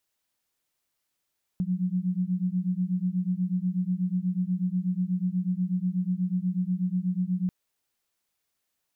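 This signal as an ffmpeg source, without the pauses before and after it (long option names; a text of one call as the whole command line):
ffmpeg -f lavfi -i "aevalsrc='0.0422*(sin(2*PI*178*t)+sin(2*PI*186.2*t))':duration=5.89:sample_rate=44100" out.wav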